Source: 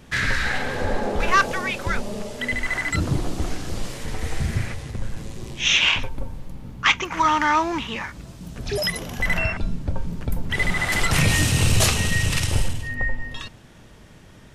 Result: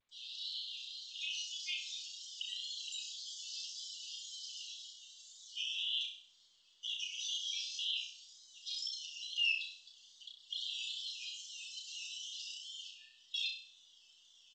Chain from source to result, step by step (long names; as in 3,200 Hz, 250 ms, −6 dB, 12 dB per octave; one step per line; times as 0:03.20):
fade in at the beginning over 1.24 s
Butterworth high-pass 2,800 Hz 72 dB per octave
high-shelf EQ 4,400 Hz +8 dB
comb filter 5.8 ms, depth 40%
compressor whose output falls as the input rises −28 dBFS, ratio −1
brickwall limiter −23.5 dBFS, peak gain reduction 11.5 dB
tape wow and flutter 95 cents
dead-zone distortion −57 dBFS
spectral peaks only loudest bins 32
high-frequency loss of the air 120 metres
flutter between parallel walls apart 5.5 metres, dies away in 0.49 s
level −1.5 dB
G.722 64 kbit/s 16,000 Hz